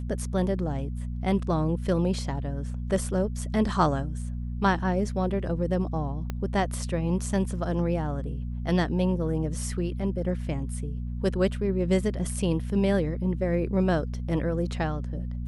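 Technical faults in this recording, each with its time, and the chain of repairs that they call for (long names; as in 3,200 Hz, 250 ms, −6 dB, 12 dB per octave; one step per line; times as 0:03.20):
mains hum 60 Hz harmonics 4 −32 dBFS
0:06.30: click −18 dBFS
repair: click removal
hum removal 60 Hz, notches 4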